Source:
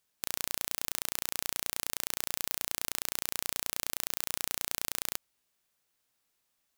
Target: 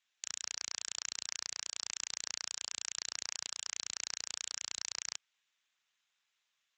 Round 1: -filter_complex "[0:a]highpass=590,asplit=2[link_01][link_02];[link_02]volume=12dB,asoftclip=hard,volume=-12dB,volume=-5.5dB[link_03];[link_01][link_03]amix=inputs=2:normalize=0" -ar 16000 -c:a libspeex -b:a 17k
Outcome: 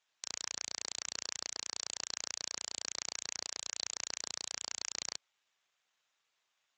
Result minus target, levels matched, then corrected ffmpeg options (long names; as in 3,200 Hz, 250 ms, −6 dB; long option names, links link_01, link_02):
500 Hz band +7.5 dB
-filter_complex "[0:a]highpass=1300,asplit=2[link_01][link_02];[link_02]volume=12dB,asoftclip=hard,volume=-12dB,volume=-5.5dB[link_03];[link_01][link_03]amix=inputs=2:normalize=0" -ar 16000 -c:a libspeex -b:a 17k